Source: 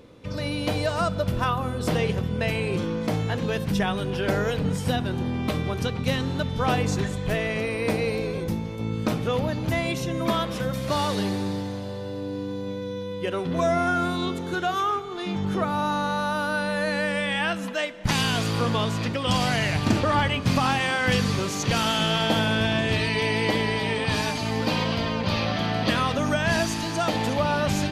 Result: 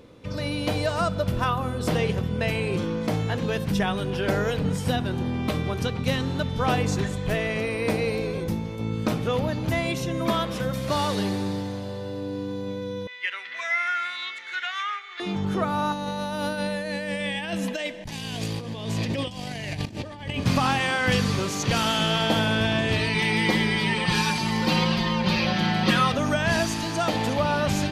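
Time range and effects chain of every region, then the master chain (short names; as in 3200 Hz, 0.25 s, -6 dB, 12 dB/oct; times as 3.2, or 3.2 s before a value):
13.07–15.2 resonant high-pass 2000 Hz, resonance Q 5.6 + air absorption 81 m
15.92–20.44 notch 1400 Hz, Q 7.6 + negative-ratio compressor -28 dBFS, ratio -0.5 + bell 1200 Hz -8.5 dB 0.71 oct
23.14–26.12 bell 630 Hz -11.5 dB 0.28 oct + comb 5.5 ms, depth 96%
whole clip: dry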